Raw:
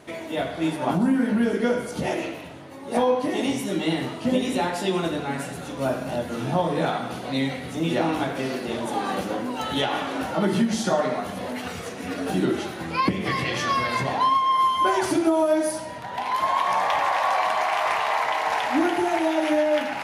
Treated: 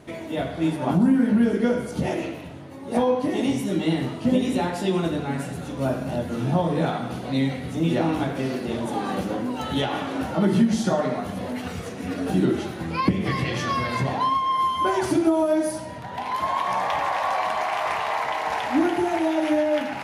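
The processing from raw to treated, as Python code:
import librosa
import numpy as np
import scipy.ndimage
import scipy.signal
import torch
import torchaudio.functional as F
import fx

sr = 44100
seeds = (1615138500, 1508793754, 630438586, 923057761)

y = fx.low_shelf(x, sr, hz=290.0, db=10.0)
y = y * librosa.db_to_amplitude(-3.0)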